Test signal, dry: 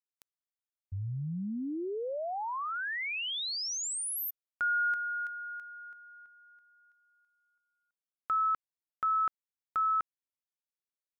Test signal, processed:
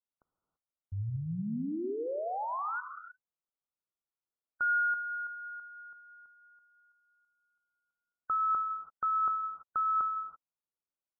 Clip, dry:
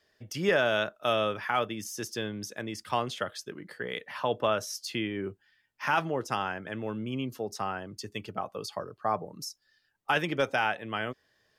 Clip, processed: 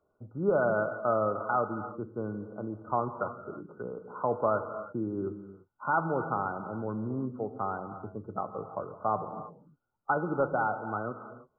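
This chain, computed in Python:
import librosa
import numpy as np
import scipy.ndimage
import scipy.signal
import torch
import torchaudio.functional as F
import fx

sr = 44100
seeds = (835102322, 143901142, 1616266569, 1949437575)

y = fx.brickwall_lowpass(x, sr, high_hz=1500.0)
y = fx.rev_gated(y, sr, seeds[0], gate_ms=360, shape='flat', drr_db=8.5)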